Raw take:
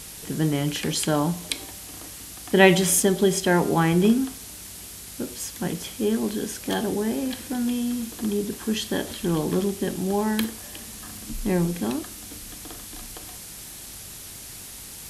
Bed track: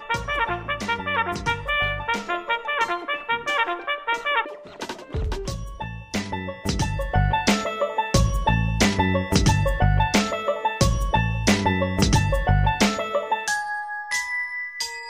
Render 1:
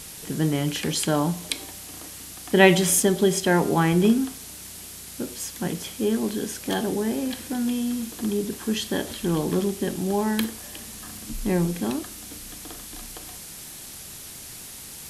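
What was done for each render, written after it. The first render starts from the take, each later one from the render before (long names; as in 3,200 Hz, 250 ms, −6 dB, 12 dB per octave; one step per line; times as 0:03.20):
hum removal 50 Hz, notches 2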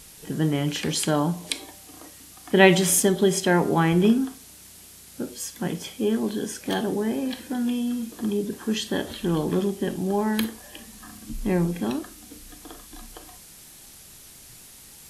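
noise reduction from a noise print 7 dB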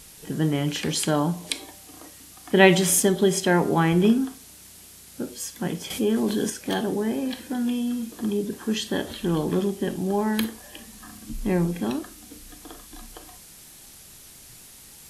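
0:05.90–0:06.50: envelope flattener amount 50%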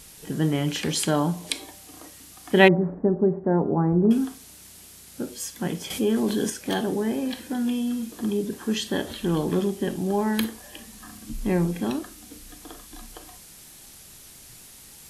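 0:02.68–0:04.11: Gaussian smoothing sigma 8.6 samples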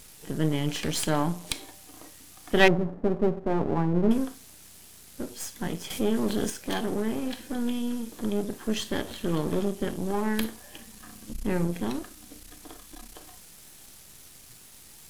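gain on one half-wave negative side −12 dB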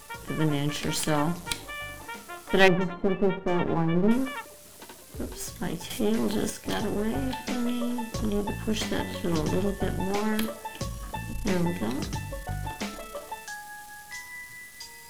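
mix in bed track −14.5 dB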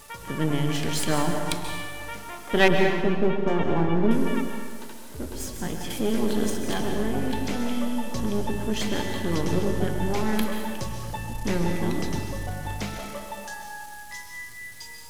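feedback echo with a low-pass in the loop 106 ms, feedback 66%, level −13.5 dB
dense smooth reverb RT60 1.5 s, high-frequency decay 0.8×, pre-delay 120 ms, DRR 4 dB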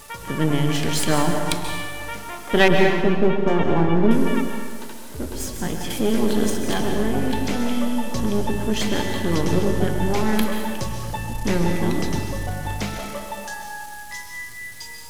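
level +4.5 dB
brickwall limiter −2 dBFS, peak gain reduction 2.5 dB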